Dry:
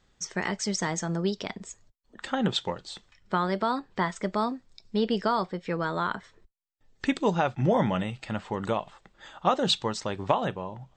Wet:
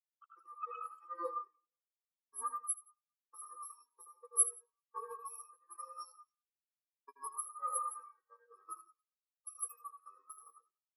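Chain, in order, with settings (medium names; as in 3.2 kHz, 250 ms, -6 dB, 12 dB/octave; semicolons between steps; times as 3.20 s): bit-reversed sample order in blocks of 64 samples; level-controlled noise filter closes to 2.8 kHz, open at -23.5 dBFS; high-pass 360 Hz 24 dB/octave; peaking EQ 1.2 kHz +15 dB 0.34 oct; compression 12:1, threshold -28 dBFS, peak gain reduction 10 dB; feedback comb 640 Hz, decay 0.29 s, mix 80%; small samples zeroed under -45 dBFS; flange 0.24 Hz, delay 1.8 ms, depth 7 ms, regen +69%; reverse bouncing-ball echo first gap 80 ms, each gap 1.15×, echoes 5; on a send at -4 dB: reverberation RT60 0.40 s, pre-delay 99 ms; on the sum: spectral contrast expander 4:1; trim +10.5 dB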